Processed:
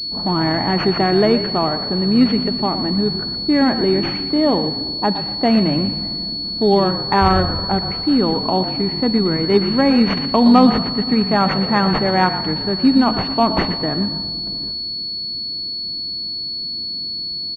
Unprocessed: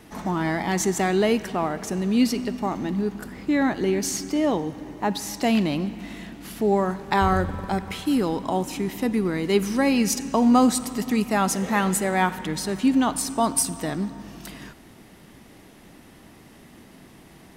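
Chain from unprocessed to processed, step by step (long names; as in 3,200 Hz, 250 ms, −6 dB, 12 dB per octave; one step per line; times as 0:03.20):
low-pass that shuts in the quiet parts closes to 330 Hz, open at −20 dBFS
echo with shifted repeats 118 ms, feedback 31%, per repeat −41 Hz, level −11 dB
switching amplifier with a slow clock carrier 4,400 Hz
level +6 dB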